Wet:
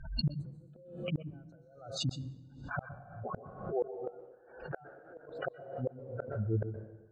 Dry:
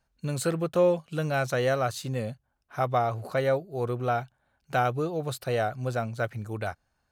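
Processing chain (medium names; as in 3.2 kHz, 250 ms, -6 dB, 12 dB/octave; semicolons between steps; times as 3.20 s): 3.68–6.27 s: tone controls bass -12 dB, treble -15 dB; spectral gate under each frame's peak -10 dB strong; inverted gate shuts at -26 dBFS, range -39 dB; distance through air 60 m; plate-style reverb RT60 0.99 s, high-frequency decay 0.95×, pre-delay 110 ms, DRR 8 dB; swell ahead of each attack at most 85 dB/s; trim +3 dB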